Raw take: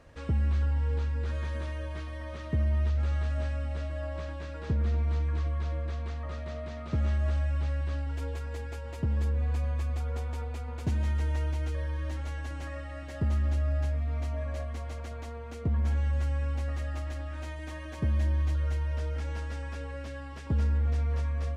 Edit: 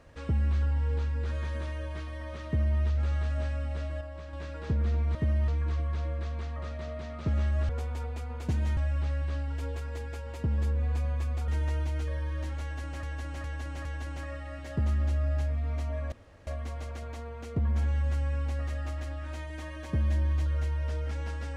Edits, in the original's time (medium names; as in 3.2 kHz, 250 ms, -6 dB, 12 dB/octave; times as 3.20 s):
2.46–2.79 s: copy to 5.15 s
4.01–4.33 s: gain -6 dB
10.07–11.15 s: move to 7.36 s
12.29–12.70 s: loop, 4 plays
14.56 s: insert room tone 0.35 s